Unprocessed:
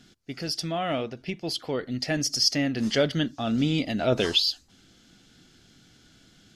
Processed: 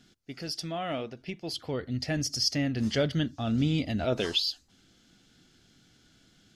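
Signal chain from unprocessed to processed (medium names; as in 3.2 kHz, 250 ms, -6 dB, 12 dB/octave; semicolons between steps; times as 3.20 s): 1.53–4.05 s: peaking EQ 81 Hz +14 dB 1.4 oct; trim -5 dB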